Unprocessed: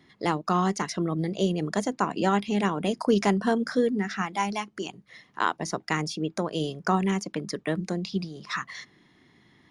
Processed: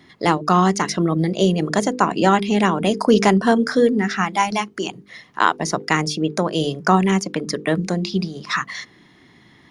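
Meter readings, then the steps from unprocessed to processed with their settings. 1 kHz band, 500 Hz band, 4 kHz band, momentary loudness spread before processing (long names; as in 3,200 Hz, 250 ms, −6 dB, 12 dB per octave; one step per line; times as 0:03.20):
+9.0 dB, +8.5 dB, +9.0 dB, 9 LU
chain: mains-hum notches 50/100/150/200/250/300/350/400/450/500 Hz
level +9 dB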